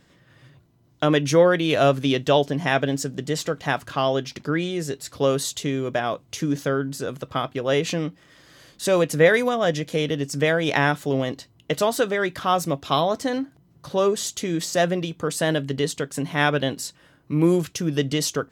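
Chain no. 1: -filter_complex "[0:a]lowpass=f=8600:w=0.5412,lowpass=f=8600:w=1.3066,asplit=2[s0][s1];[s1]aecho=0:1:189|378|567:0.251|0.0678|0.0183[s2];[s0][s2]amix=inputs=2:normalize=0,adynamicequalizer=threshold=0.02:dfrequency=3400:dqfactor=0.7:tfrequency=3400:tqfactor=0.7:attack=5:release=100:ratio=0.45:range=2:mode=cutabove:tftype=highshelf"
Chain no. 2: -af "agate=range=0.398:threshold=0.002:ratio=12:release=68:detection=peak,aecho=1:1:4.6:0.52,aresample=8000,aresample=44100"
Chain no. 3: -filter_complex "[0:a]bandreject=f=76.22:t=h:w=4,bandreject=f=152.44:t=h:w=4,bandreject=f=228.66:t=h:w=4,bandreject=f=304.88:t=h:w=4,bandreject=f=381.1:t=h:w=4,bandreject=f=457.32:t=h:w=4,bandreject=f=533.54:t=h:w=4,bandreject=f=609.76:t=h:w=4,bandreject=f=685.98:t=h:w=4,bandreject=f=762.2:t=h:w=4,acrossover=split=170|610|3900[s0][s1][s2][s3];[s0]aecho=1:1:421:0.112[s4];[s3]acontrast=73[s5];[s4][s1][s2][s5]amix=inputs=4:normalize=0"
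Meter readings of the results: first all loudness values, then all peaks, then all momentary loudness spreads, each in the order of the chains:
-23.0 LUFS, -22.5 LUFS, -22.5 LUFS; -4.0 dBFS, -3.5 dBFS, -4.0 dBFS; 10 LU, 9 LU, 9 LU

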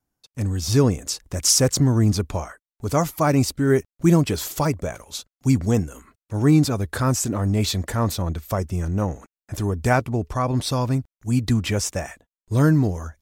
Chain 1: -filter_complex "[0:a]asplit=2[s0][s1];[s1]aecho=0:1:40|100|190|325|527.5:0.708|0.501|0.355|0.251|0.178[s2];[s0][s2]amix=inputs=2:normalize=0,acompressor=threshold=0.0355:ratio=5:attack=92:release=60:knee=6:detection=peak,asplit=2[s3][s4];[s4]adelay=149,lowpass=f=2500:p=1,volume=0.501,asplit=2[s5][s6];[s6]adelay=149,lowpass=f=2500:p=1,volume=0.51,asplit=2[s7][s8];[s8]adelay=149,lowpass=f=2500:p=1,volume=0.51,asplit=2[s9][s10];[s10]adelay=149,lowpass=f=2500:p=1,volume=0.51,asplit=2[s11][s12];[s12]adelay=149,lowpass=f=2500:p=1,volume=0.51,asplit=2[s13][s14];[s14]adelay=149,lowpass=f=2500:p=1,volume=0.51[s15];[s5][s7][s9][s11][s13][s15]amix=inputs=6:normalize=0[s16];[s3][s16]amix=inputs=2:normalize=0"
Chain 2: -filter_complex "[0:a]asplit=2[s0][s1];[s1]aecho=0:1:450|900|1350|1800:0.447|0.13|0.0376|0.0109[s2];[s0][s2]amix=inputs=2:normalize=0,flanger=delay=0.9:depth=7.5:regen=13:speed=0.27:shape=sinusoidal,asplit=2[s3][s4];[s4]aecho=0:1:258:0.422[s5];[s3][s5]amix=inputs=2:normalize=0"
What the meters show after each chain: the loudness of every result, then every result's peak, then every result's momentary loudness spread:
-25.0 LUFS, -24.0 LUFS; -11.0 dBFS, -6.5 dBFS; 5 LU, 10 LU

